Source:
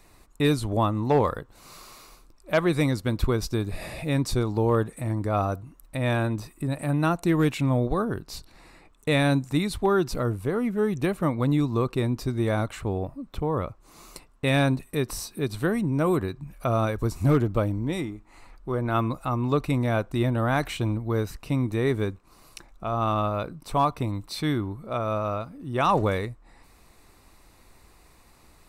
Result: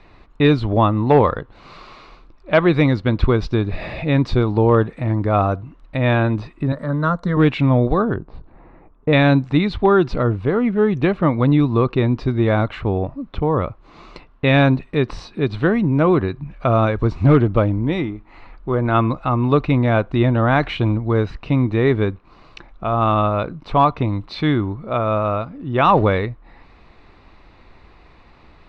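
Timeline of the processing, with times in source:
6.72–7.37 s: static phaser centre 510 Hz, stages 8
8.16–9.13 s: low-pass 1 kHz
whole clip: low-pass 3.7 kHz 24 dB/octave; trim +8 dB

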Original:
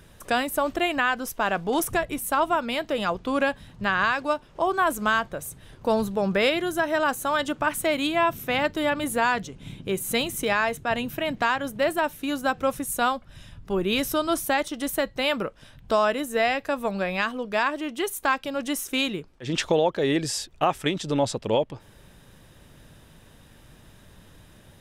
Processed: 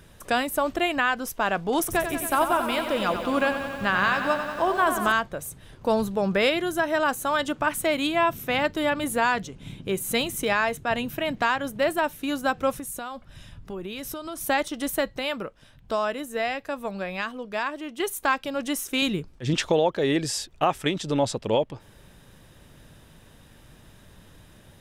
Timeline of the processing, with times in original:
1.79–5.12 s: bit-crushed delay 92 ms, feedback 80%, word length 8-bit, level -8.5 dB
12.78–14.41 s: compression, threshold -31 dBFS
15.19–18.00 s: gain -4.5 dB
19.02–19.54 s: tone controls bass +8 dB, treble +4 dB

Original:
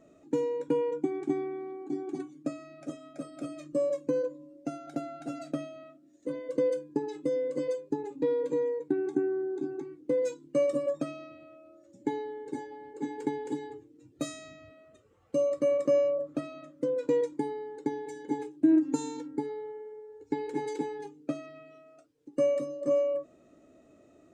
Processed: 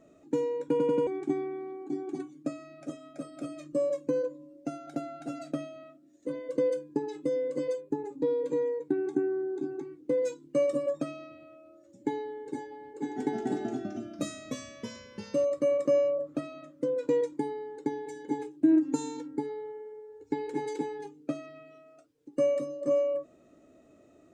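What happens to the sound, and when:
0.71 s: stutter in place 0.09 s, 4 plays
7.80–8.45 s: peaking EQ 6.2 kHz -> 1.4 kHz -9 dB 0.88 oct
12.88–15.45 s: ever faster or slower copies 140 ms, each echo -2 st, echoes 3

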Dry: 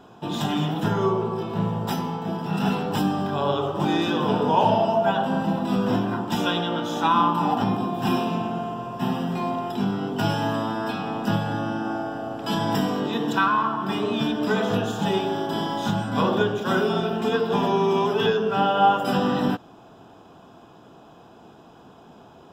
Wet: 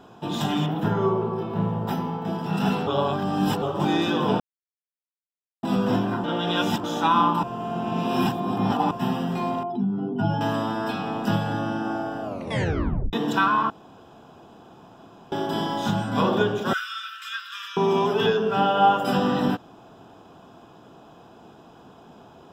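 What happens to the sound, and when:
0.66–2.25 s: peaking EQ 7.4 kHz -10.5 dB 2.3 oct
2.87–3.62 s: reverse
4.40–5.63 s: mute
6.24–6.84 s: reverse
7.43–8.91 s: reverse
9.63–10.41 s: spectral contrast enhancement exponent 1.8
12.23 s: tape stop 0.90 s
13.70–15.32 s: room tone
16.73–17.77 s: steep high-pass 1.2 kHz 96 dB/octave

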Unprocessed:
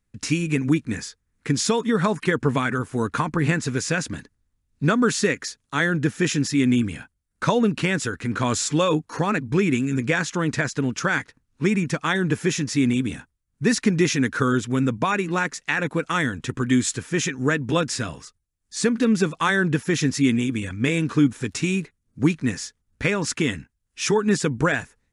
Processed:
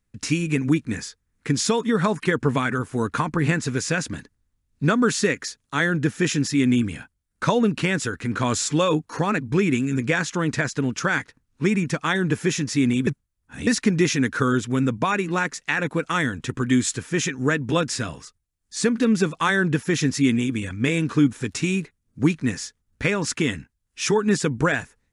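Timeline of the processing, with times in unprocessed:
13.07–13.67 s: reverse

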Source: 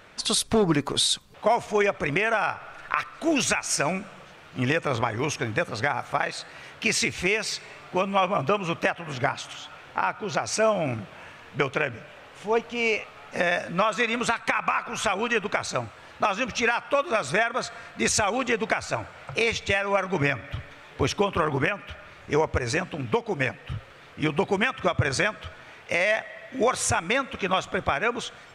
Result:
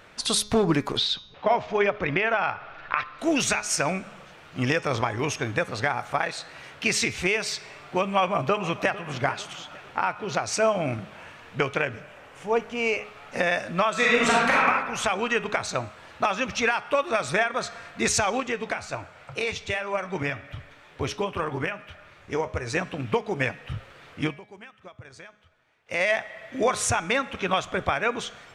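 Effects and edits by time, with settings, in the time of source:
0.97–3.19 s: low-pass 4.5 kHz 24 dB/octave
4.60–5.05 s: peaking EQ 5.4 kHz +8.5 dB 0.25 oct
8.18–9.08 s: echo throw 450 ms, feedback 45%, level -16.5 dB
12.00–13.05 s: peaking EQ 4 kHz -5.5 dB
13.92–14.60 s: reverb throw, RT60 1.2 s, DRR -4.5 dB
18.40–22.75 s: flange 1.4 Hz, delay 6.6 ms, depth 4.3 ms, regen -76%
24.23–26.01 s: dip -21.5 dB, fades 0.15 s
whole clip: de-hum 209.2 Hz, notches 32

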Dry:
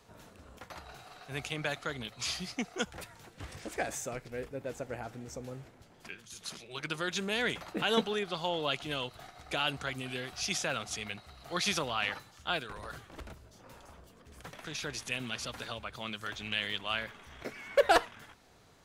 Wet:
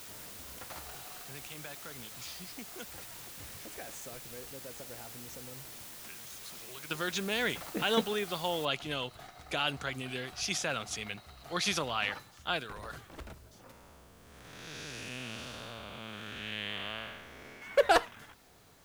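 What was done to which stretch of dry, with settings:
1.21–6.91 s: compression 2:1, threshold -51 dBFS
8.65 s: noise floor step -48 dB -67 dB
13.71–17.62 s: spectral blur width 321 ms

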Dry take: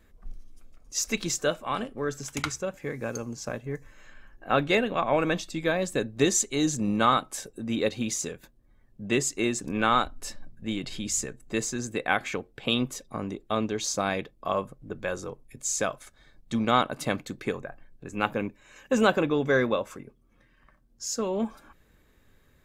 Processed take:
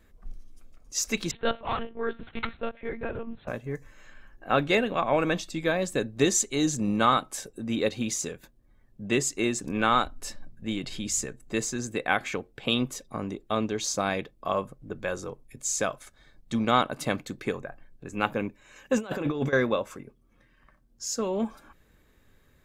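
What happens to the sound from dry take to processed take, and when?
1.31–3.48 s: monotone LPC vocoder at 8 kHz 230 Hz
18.97–19.53 s: compressor with a negative ratio -28 dBFS, ratio -0.5

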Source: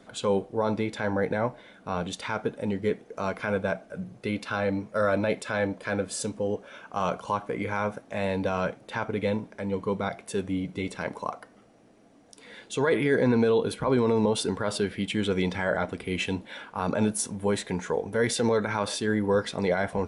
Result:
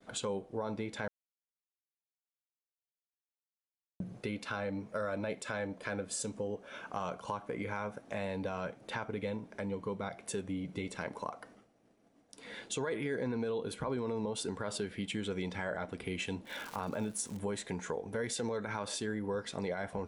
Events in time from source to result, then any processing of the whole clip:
1.08–4.00 s: mute
16.45–17.38 s: crackle 400 per s -36 dBFS
whole clip: expander -49 dBFS; dynamic bell 7.4 kHz, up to +5 dB, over -51 dBFS, Q 2.3; compression 3:1, threshold -37 dBFS

